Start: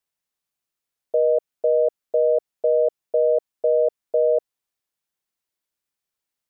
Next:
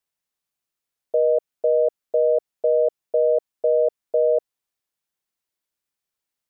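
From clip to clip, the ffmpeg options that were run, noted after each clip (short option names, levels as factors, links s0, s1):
-af anull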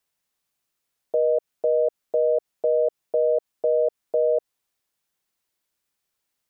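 -af "alimiter=limit=0.106:level=0:latency=1:release=88,volume=1.88"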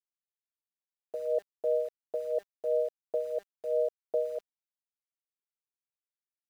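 -af "bandreject=f=199.9:t=h:w=4,bandreject=f=399.8:t=h:w=4,bandreject=f=599.7:t=h:w=4,tremolo=f=2.9:d=0.73,aeval=exprs='val(0)*gte(abs(val(0)),0.00631)':c=same,volume=0.501"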